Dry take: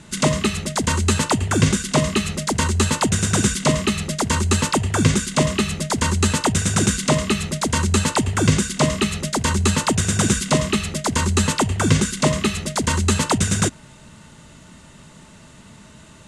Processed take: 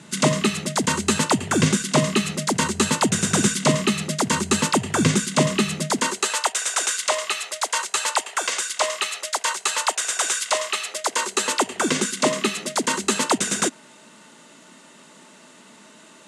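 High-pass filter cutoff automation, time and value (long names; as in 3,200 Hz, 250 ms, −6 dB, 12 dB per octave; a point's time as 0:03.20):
high-pass filter 24 dB per octave
0:05.86 140 Hz
0:06.35 600 Hz
0:10.71 600 Hz
0:11.97 240 Hz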